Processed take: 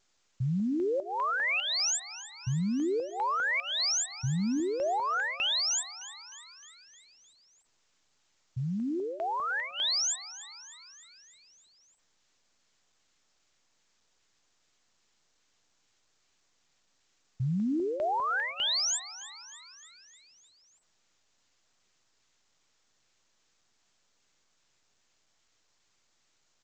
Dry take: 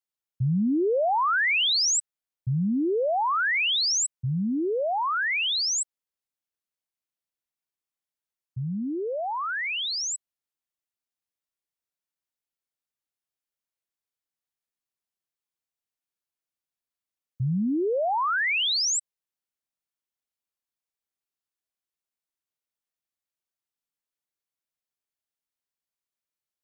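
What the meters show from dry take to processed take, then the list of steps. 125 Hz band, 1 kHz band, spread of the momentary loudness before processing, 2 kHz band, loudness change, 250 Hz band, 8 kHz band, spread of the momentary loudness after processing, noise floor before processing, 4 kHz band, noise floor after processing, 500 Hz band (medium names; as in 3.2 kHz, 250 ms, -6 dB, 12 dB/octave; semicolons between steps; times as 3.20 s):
-4.0 dB, -5.0 dB, 9 LU, -6.0 dB, -5.0 dB, -4.0 dB, -4.5 dB, 17 LU, under -85 dBFS, -4.5 dB, -72 dBFS, -5.5 dB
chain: treble shelf 4.6 kHz +7.5 dB; peak limiter -23.5 dBFS, peak gain reduction 9 dB; LFO notch square 2.5 Hz 650–2500 Hz; frequency-shifting echo 307 ms, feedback 61%, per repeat +110 Hz, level -16 dB; trim -2 dB; A-law 128 kbps 16 kHz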